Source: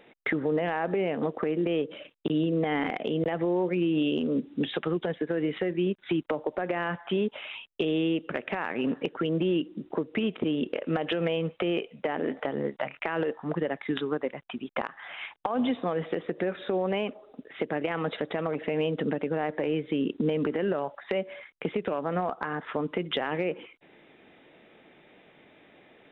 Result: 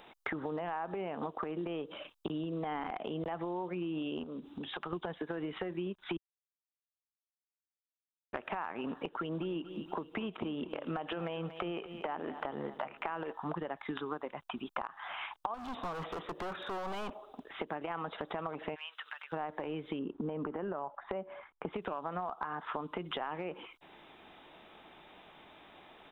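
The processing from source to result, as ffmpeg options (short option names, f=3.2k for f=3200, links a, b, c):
-filter_complex "[0:a]asettb=1/sr,asplit=3[a][b][c];[a]atrim=end=4.234[d];[b]atrim=start=4.23:end=4.93,asetpts=PTS-STARTPTS,afade=t=in:d=0.004:c=qsin,afade=t=out:st=0.696:d=0.004:c=qsin,acompressor=threshold=-35dB:ratio=6:attack=3.2:release=140:knee=1:detection=peak[e];[c]atrim=start=4.926[f];[d][e]acrossfade=d=0.004:c1=hsin:c2=qsin[g];[g][f]acrossfade=d=0.004:c1=qsin:c2=hsin,asplit=3[h][i][j];[h]afade=t=out:st=9.3:d=0.02[k];[i]aecho=1:1:236|472|708:0.15|0.0598|0.0239,afade=t=in:st=9.3:d=0.02,afade=t=out:st=13.31:d=0.02[l];[j]afade=t=in:st=13.31:d=0.02[m];[k][l][m]amix=inputs=3:normalize=0,asettb=1/sr,asplit=3[n][o][p];[n]atrim=end=15.544[q];[o]atrim=start=15.54:end=17.52,asetpts=PTS-STARTPTS,afade=t=in:d=0.004:c=qsin,afade=t=out:st=1.976:d=0.004:c=qsin,asoftclip=type=hard:threshold=-33.5dB[r];[p]atrim=start=17.516[s];[q][r]acrossfade=d=0.004:c1=hsin:c2=qsin[t];[t][s]acrossfade=d=0.004:c1=qsin:c2=hsin,asplit=3[u][v][w];[u]afade=t=out:st=18.74:d=0.02[x];[v]highpass=f=1.4k:w=0.5412,highpass=f=1.4k:w=1.3066,afade=t=in:st=18.74:d=0.02,afade=t=out:st=19.32:d=0.02[y];[w]afade=t=in:st=19.32:d=0.02[z];[x][y][z]amix=inputs=3:normalize=0,asettb=1/sr,asplit=3[aa][ab][ac];[aa]atrim=end=19.994[ad];[ab]atrim=start=19.99:end=21.73,asetpts=PTS-STARTPTS,afade=t=in:d=0.004:c=qsin,afade=t=out:st=1.736:d=0.004:c=qsin,lowpass=1.4k[ae];[ac]atrim=start=21.726[af];[ad][ae]acrossfade=d=0.004:c1=hsin:c2=qsin[ag];[ag][af]acrossfade=d=0.004:c1=qsin:c2=hsin,asplit=3[ah][ai][aj];[ah]atrim=end=6.17,asetpts=PTS-STARTPTS,afade=t=out:st=6.166:d=0.004:c=hsin[ak];[ai]atrim=start=6.17:end=8.33,asetpts=PTS-STARTPTS,volume=0[al];[aj]atrim=start=8.33,asetpts=PTS-STARTPTS,afade=t=in:d=0.004:c=hsin[am];[ak][al][am]concat=n=3:v=0:a=1,acrossover=split=2700[an][ao];[ao]acompressor=threshold=-57dB:ratio=4:attack=1:release=60[ap];[an][ap]amix=inputs=2:normalize=0,equalizer=f=125:t=o:w=1:g=-10,equalizer=f=250:t=o:w=1:g=-8,equalizer=f=500:t=o:w=1:g=-11,equalizer=f=1k:t=o:w=1:g=5,equalizer=f=2k:t=o:w=1:g=-11,acompressor=threshold=-42dB:ratio=6,volume=7.5dB"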